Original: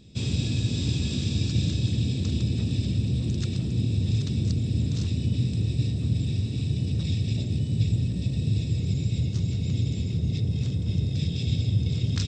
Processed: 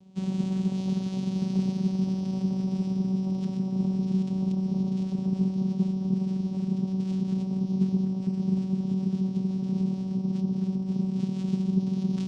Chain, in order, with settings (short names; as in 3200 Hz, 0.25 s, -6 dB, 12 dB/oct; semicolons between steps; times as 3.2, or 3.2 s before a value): vocoder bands 4, saw 189 Hz; on a send: thin delay 0.603 s, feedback 62%, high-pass 2300 Hz, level -7.5 dB